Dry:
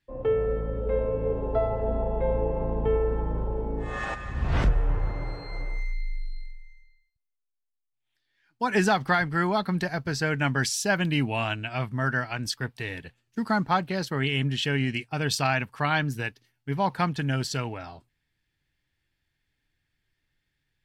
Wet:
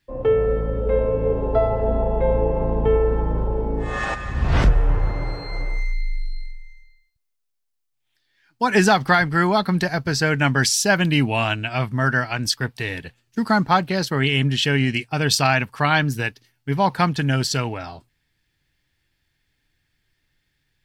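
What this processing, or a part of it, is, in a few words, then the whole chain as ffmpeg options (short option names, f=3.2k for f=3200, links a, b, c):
presence and air boost: -af "equalizer=f=5k:t=o:w=0.77:g=2.5,highshelf=f=10k:g=3.5,volume=6.5dB"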